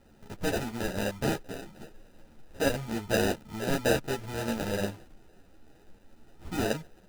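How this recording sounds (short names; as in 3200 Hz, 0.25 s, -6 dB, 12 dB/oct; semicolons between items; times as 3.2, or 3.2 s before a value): aliases and images of a low sample rate 1100 Hz, jitter 0%; a shimmering, thickened sound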